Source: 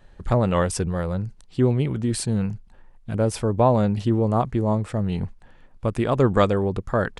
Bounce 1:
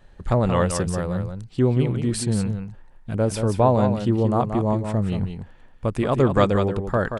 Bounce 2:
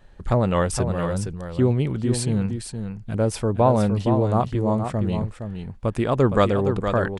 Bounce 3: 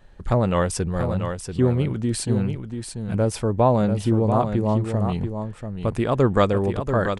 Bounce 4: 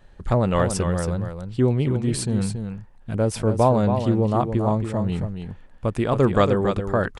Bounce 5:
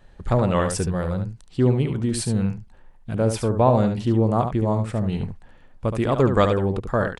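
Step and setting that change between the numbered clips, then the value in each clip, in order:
delay, time: 179 ms, 465 ms, 687 ms, 277 ms, 72 ms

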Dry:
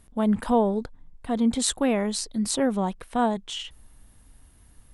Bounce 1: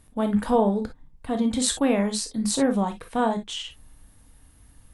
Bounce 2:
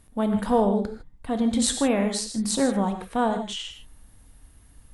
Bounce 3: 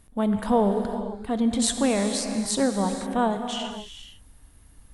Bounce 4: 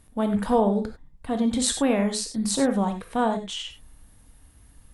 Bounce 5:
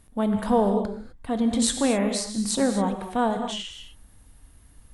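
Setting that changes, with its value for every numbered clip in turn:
gated-style reverb, gate: 80 ms, 180 ms, 530 ms, 120 ms, 280 ms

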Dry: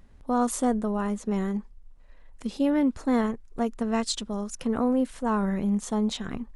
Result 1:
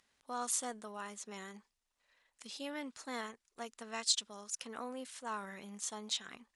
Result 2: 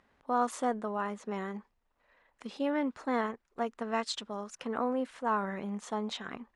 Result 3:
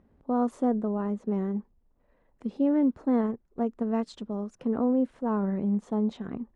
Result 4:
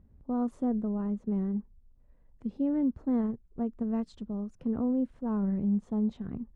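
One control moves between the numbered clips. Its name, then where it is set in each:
band-pass filter, frequency: 5.9 kHz, 1.4 kHz, 330 Hz, 110 Hz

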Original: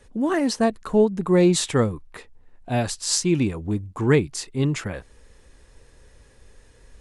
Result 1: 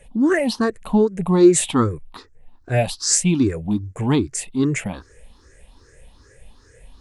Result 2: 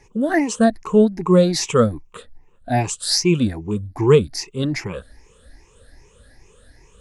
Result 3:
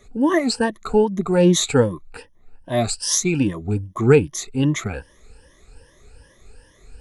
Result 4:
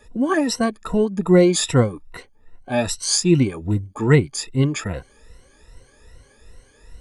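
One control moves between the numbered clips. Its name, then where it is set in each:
drifting ripple filter, ripples per octave: 0.5, 0.74, 1.2, 2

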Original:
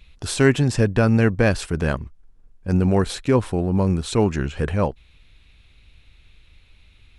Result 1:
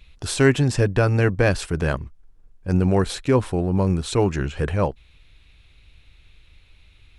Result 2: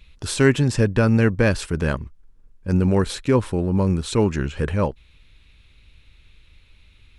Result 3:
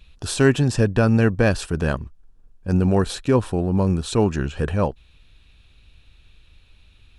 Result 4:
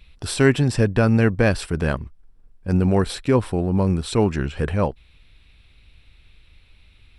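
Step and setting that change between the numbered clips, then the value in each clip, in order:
band-stop, frequency: 220 Hz, 720 Hz, 2.1 kHz, 6.6 kHz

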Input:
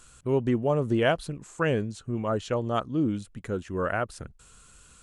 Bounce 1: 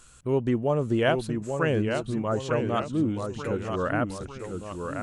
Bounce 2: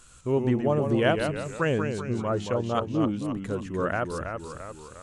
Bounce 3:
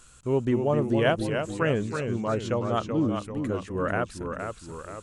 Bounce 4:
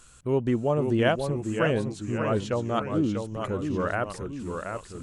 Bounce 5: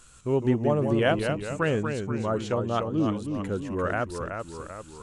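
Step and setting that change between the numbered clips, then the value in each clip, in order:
ever faster or slower copies, time: 794 ms, 93 ms, 232 ms, 493 ms, 141 ms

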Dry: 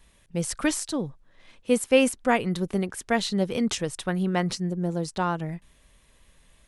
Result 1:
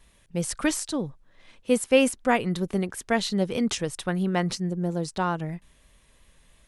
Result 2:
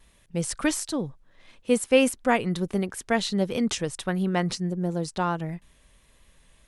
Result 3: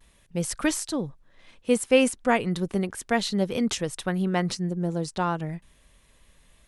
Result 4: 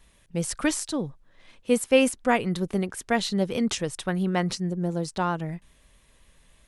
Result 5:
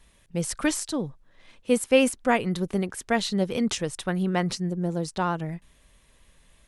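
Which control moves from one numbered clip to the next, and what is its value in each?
vibrato, rate: 3.1 Hz, 1.5 Hz, 0.34 Hz, 7.4 Hz, 16 Hz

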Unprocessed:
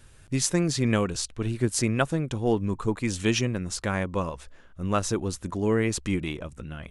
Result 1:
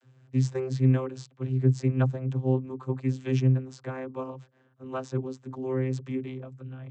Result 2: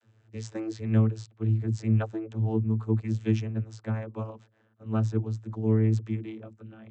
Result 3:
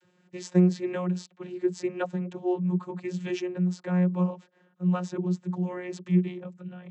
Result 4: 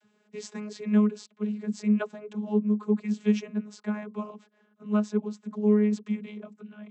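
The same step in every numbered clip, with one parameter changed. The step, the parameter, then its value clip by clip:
vocoder, frequency: 130 Hz, 110 Hz, 180 Hz, 210 Hz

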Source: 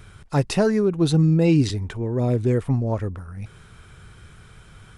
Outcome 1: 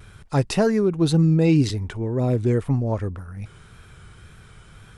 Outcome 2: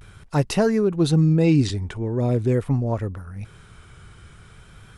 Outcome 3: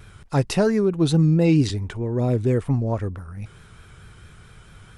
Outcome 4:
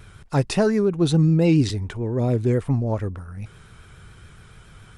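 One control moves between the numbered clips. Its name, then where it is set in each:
vibrato, rate: 1.9 Hz, 0.43 Hz, 4.5 Hz, 7.1 Hz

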